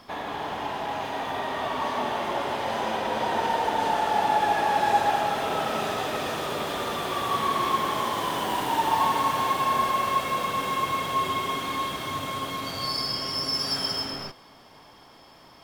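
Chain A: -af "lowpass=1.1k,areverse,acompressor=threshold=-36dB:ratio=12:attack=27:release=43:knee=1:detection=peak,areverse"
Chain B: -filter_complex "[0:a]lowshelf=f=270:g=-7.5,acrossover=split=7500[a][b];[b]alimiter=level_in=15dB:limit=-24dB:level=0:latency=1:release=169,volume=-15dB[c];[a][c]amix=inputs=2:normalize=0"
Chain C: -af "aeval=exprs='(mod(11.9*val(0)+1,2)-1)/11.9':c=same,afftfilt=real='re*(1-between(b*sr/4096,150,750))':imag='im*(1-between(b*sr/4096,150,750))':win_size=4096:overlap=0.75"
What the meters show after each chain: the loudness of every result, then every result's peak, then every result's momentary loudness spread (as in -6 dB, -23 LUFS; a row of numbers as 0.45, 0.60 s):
-35.5, -27.0, -27.0 LUFS; -23.5, -11.0, -16.5 dBFS; 3, 8, 7 LU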